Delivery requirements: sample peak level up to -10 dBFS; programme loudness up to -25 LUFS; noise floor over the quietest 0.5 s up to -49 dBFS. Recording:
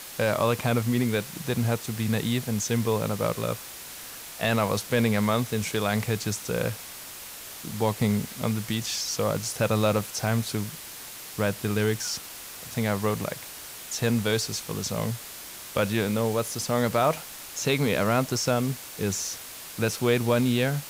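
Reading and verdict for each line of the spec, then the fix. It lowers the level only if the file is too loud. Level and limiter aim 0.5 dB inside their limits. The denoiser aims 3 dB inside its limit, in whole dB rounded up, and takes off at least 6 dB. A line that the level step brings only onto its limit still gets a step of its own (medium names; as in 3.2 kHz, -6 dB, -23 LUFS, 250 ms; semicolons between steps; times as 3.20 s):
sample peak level -11.0 dBFS: pass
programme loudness -27.0 LUFS: pass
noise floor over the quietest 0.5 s -41 dBFS: fail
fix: noise reduction 11 dB, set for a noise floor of -41 dBFS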